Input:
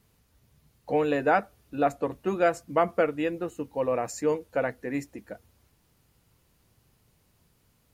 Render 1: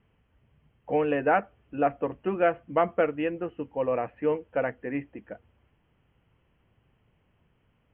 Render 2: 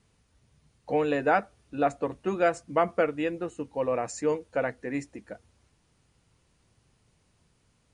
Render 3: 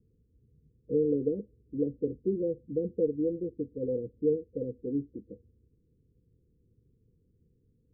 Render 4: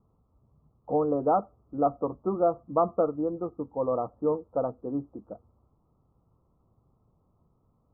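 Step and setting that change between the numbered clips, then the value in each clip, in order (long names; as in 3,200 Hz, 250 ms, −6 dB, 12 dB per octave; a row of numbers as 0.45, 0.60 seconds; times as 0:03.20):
Chebyshev low-pass filter, frequency: 3,200, 10,000, 500, 1,300 Hertz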